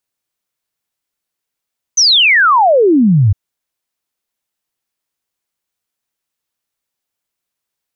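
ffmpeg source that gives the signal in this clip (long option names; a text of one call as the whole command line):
ffmpeg -f lavfi -i "aevalsrc='0.501*clip(min(t,1.36-t)/0.01,0,1)*sin(2*PI*6300*1.36/log(92/6300)*(exp(log(92/6300)*t/1.36)-1))':duration=1.36:sample_rate=44100" out.wav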